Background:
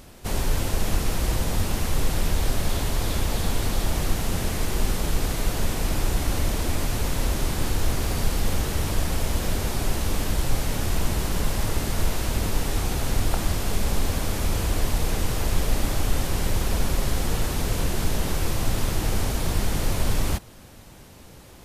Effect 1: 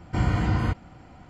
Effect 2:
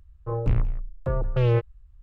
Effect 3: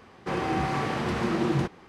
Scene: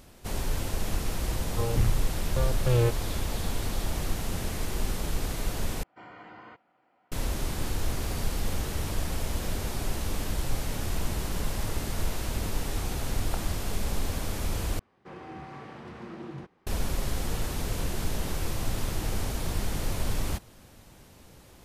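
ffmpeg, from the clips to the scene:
-filter_complex "[0:a]volume=-6dB[a];[1:a]highpass=450,lowpass=2.9k[b];[3:a]equalizer=f=8.9k:w=0.37:g=-5.5[c];[a]asplit=3[d][e][f];[d]atrim=end=5.834[g];[b]atrim=end=1.29,asetpts=PTS-STARTPTS,volume=-14.5dB[h];[e]atrim=start=7.116:end=14.794[i];[c]atrim=end=1.88,asetpts=PTS-STARTPTS,volume=-15dB[j];[f]atrim=start=16.666[k];[2:a]atrim=end=2.02,asetpts=PTS-STARTPTS,volume=-2.5dB,afade=t=in:d=0.004:c=hsin,afade=t=out:st=2.016:d=0.004:c=hsin,adelay=1300[l];[g][h]acrossfade=d=0.004:c1=hsin:c2=hsin[m];[m][i]acrossfade=d=0.004:c1=hsin:c2=hsin[n];[n][j]acrossfade=d=0.004:c1=hsin:c2=hsin[o];[o][k]acrossfade=d=0.004:c1=hsin:c2=hsin[p];[p][l]amix=inputs=2:normalize=0"

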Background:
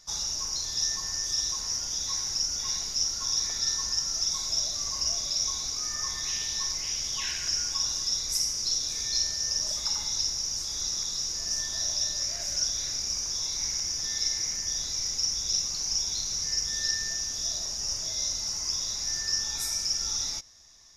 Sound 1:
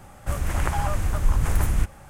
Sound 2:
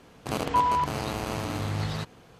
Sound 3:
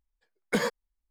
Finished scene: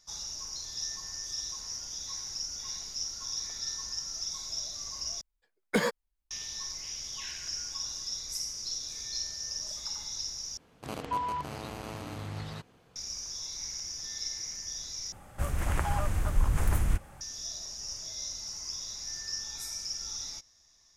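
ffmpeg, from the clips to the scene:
-filter_complex "[0:a]volume=-8dB,asplit=4[a][b][c][d];[a]atrim=end=5.214[e];[3:a]atrim=end=1.1,asetpts=PTS-STARTPTS,volume=-0.5dB[f];[b]atrim=start=6.306:end=10.574[g];[2:a]atrim=end=2.39,asetpts=PTS-STARTPTS,volume=-9dB[h];[c]atrim=start=12.956:end=15.124[i];[1:a]atrim=end=2.09,asetpts=PTS-STARTPTS,volume=-5dB[j];[d]atrim=start=17.206[k];[e][f]acrossfade=d=0.004:c1=hsin:c2=hsin[l];[l][g]acrossfade=d=0.004:c1=hsin:c2=hsin[m];[m][h]acrossfade=d=0.004:c1=hsin:c2=hsin[n];[n][i]acrossfade=d=0.004:c1=hsin:c2=hsin[o];[o][j]acrossfade=d=0.004:c1=hsin:c2=hsin[p];[p][k]acrossfade=d=0.004:c1=hsin:c2=hsin"

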